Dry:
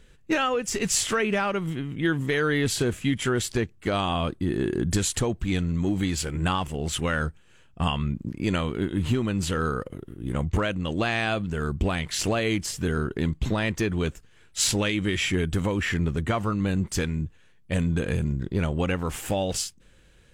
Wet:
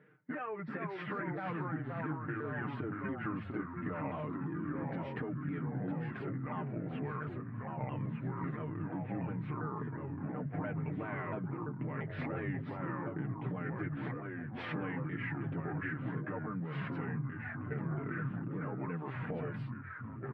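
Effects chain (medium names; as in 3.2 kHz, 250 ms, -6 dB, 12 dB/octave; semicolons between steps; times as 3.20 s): sawtooth pitch modulation -5.5 st, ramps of 343 ms; elliptic band-pass 150–1900 Hz, stop band 50 dB; comb 6.6 ms, depth 80%; peak limiter -20 dBFS, peak gain reduction 9.5 dB; compression 4:1, threshold -35 dBFS, peak gain reduction 10 dB; ever faster or slower copies 354 ms, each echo -2 st, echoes 3; trim -3.5 dB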